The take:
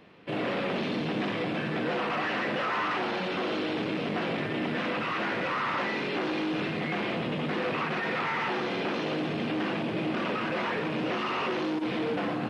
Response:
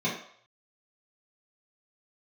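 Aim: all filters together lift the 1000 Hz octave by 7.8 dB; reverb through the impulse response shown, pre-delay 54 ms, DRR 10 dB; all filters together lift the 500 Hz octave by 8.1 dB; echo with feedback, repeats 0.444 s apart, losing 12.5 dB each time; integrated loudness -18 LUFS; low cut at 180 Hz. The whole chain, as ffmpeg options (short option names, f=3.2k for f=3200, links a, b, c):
-filter_complex "[0:a]highpass=180,equalizer=f=500:t=o:g=8,equalizer=f=1k:t=o:g=7.5,aecho=1:1:444|888|1332:0.237|0.0569|0.0137,asplit=2[a][b];[1:a]atrim=start_sample=2205,adelay=54[c];[b][c]afir=irnorm=-1:irlink=0,volume=-20dB[d];[a][d]amix=inputs=2:normalize=0,volume=6dB"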